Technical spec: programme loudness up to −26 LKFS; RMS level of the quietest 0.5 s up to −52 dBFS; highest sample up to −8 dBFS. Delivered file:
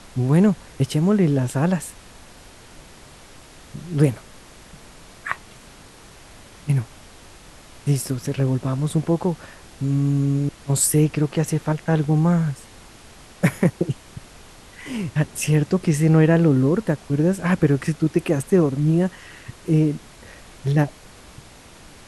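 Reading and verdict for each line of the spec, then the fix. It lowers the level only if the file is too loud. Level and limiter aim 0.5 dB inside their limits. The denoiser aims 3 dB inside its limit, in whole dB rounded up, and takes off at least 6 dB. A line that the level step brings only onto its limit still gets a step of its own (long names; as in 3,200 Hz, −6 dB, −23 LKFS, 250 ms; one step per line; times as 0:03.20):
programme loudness −21.0 LKFS: out of spec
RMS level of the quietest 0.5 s −45 dBFS: out of spec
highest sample −4.5 dBFS: out of spec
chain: broadband denoise 6 dB, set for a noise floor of −45 dBFS
level −5.5 dB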